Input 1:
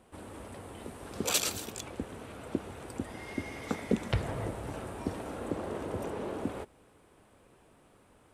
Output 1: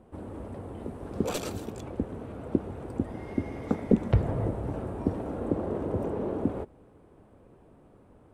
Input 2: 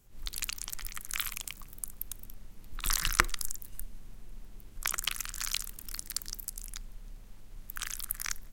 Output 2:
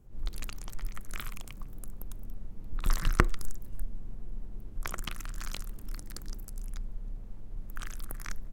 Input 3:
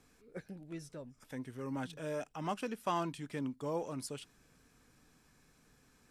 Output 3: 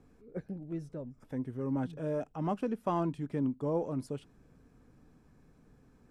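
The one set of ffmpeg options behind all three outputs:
-af "aeval=exprs='0.891*(cos(1*acos(clip(val(0)/0.891,-1,1)))-cos(1*PI/2))+0.0708*(cos(4*acos(clip(val(0)/0.891,-1,1)))-cos(4*PI/2))':channel_layout=same,tiltshelf=frequency=1300:gain=10,volume=-2dB"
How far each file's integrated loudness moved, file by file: +4.5, −5.0, +5.0 LU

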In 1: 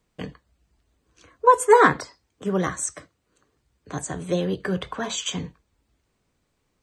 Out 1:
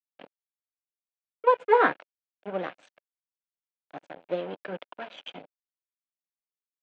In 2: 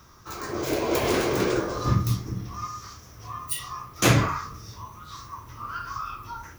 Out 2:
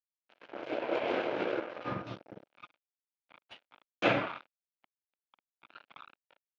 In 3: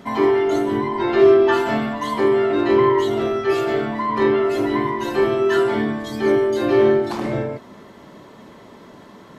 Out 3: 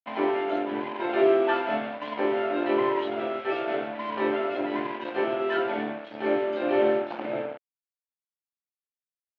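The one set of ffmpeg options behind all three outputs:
-af "aeval=exprs='sgn(val(0))*max(abs(val(0))-0.0335,0)':channel_layout=same,highpass=360,equalizer=frequency=400:width_type=q:width=4:gain=-7,equalizer=frequency=580:width_type=q:width=4:gain=3,equalizer=frequency=1100:width_type=q:width=4:gain=-10,equalizer=frequency=1900:width_type=q:width=4:gain=-7,lowpass=frequency=2800:width=0.5412,lowpass=frequency=2800:width=1.3066"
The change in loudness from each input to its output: −4.5, −7.5, −8.5 LU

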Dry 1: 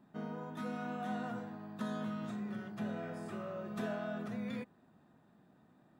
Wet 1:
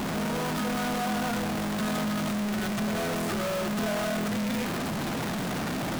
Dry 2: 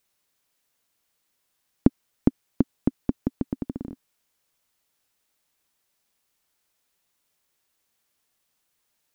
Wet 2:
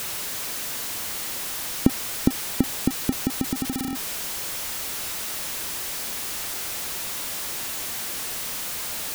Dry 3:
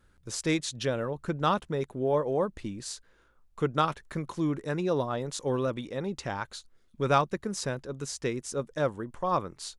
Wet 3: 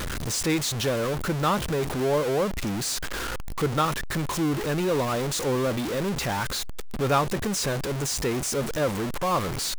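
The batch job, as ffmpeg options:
-af "aeval=exprs='val(0)+0.5*0.0668*sgn(val(0))':channel_layout=same,volume=-1dB"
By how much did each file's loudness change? +12.0, +1.5, +4.5 LU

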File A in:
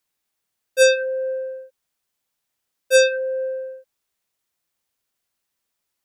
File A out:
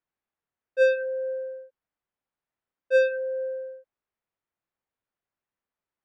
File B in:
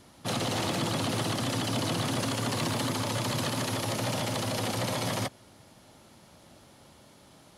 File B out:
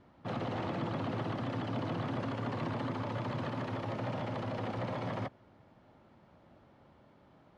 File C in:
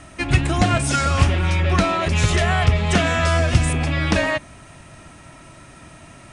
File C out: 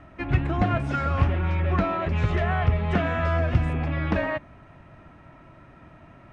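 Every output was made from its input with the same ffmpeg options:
-af "lowpass=1800,volume=-5dB"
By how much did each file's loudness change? −6.5, −7.0, −6.0 LU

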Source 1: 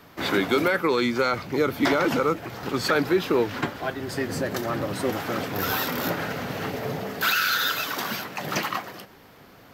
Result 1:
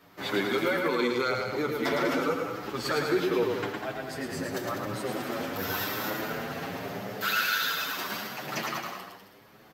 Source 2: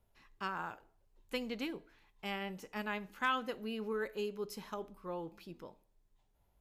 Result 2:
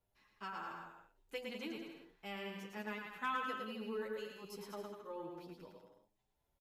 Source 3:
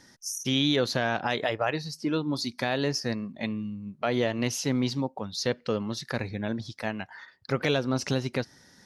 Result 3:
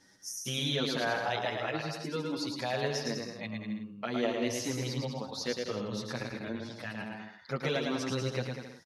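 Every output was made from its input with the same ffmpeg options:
-filter_complex "[0:a]lowshelf=frequency=100:gain=-6,asplit=2[link_01][link_02];[link_02]aecho=0:1:110|198|268.4|324.7|369.8:0.631|0.398|0.251|0.158|0.1[link_03];[link_01][link_03]amix=inputs=2:normalize=0,asplit=2[link_04][link_05];[link_05]adelay=8.1,afreqshift=0.88[link_06];[link_04][link_06]amix=inputs=2:normalize=1,volume=-3.5dB"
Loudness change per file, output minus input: −4.5, −4.5, −5.0 LU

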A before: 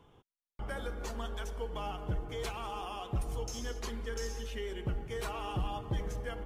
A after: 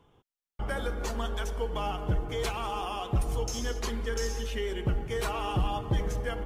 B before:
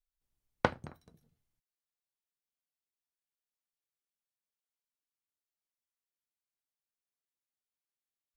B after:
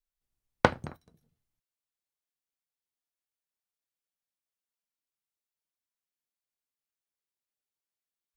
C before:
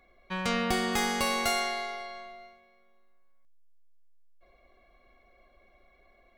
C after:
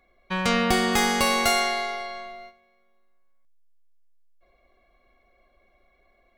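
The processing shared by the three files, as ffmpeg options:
-af "agate=range=-8dB:threshold=-51dB:ratio=16:detection=peak,volume=6.5dB"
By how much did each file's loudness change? +6.5, +6.5, +6.5 LU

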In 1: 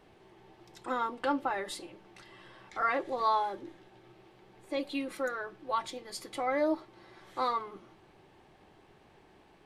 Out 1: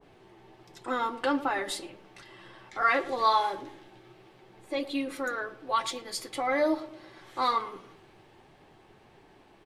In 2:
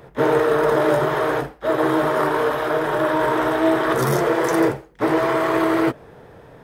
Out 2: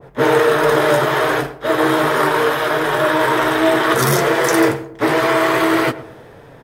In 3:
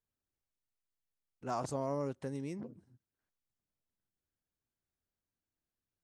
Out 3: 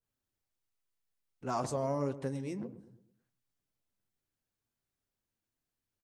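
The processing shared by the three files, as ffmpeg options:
-filter_complex "[0:a]flanger=delay=7:depth=2.1:regen=-48:speed=1.4:shape=sinusoidal,asplit=2[link_01][link_02];[link_02]adelay=111,lowpass=frequency=1100:poles=1,volume=-14dB,asplit=2[link_03][link_04];[link_04]adelay=111,lowpass=frequency=1100:poles=1,volume=0.49,asplit=2[link_05][link_06];[link_06]adelay=111,lowpass=frequency=1100:poles=1,volume=0.49,asplit=2[link_07][link_08];[link_08]adelay=111,lowpass=frequency=1100:poles=1,volume=0.49,asplit=2[link_09][link_10];[link_10]adelay=111,lowpass=frequency=1100:poles=1,volume=0.49[link_11];[link_01][link_03][link_05][link_07][link_09][link_11]amix=inputs=6:normalize=0,adynamicequalizer=threshold=0.01:dfrequency=1500:dqfactor=0.7:tfrequency=1500:tqfactor=0.7:attack=5:release=100:ratio=0.375:range=4:mode=boostabove:tftype=highshelf,volume=6.5dB"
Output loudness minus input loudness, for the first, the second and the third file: +4.0, +4.0, +2.5 LU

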